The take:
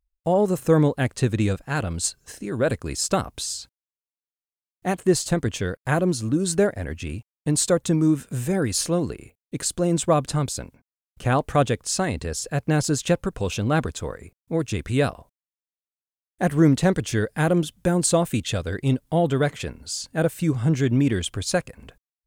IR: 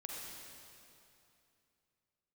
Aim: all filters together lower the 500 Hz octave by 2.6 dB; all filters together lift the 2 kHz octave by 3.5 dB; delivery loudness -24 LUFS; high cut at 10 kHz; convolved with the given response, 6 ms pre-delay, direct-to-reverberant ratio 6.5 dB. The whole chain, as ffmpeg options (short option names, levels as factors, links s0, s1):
-filter_complex "[0:a]lowpass=10000,equalizer=f=500:t=o:g=-3.5,equalizer=f=2000:t=o:g=5,asplit=2[s0][s1];[1:a]atrim=start_sample=2205,adelay=6[s2];[s1][s2]afir=irnorm=-1:irlink=0,volume=0.562[s3];[s0][s3]amix=inputs=2:normalize=0,volume=0.891"